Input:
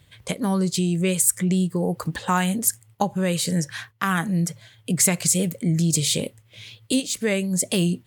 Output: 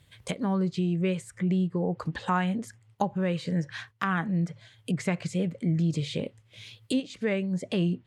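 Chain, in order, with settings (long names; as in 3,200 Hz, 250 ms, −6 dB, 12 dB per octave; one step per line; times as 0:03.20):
treble cut that deepens with the level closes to 2,400 Hz, closed at −21 dBFS
level −4.5 dB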